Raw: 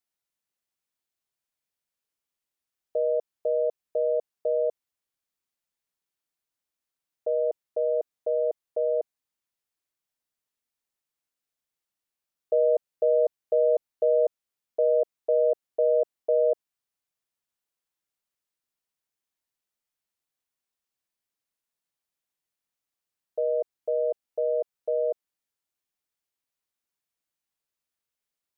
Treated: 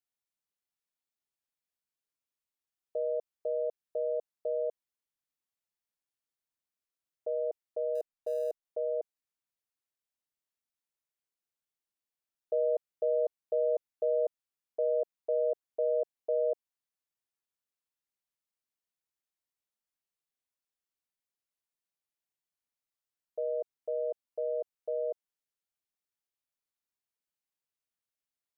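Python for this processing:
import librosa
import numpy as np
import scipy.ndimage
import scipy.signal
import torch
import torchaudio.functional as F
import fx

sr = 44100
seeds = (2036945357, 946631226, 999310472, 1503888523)

y = fx.dead_time(x, sr, dead_ms=0.053, at=(7.95, 8.65))
y = y * 10.0 ** (-7.0 / 20.0)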